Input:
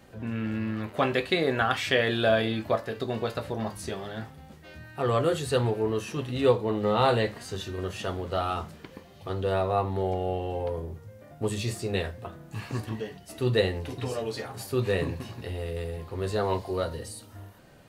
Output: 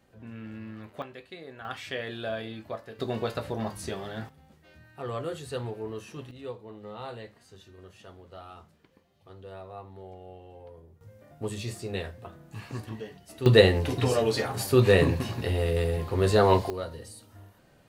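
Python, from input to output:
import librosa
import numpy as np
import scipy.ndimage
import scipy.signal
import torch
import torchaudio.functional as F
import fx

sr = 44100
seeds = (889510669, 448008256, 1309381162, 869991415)

y = fx.gain(x, sr, db=fx.steps((0.0, -10.5), (1.02, -19.0), (1.65, -10.5), (2.99, -0.5), (4.29, -9.0), (6.31, -17.0), (11.01, -4.5), (13.46, 7.0), (16.7, -5.5)))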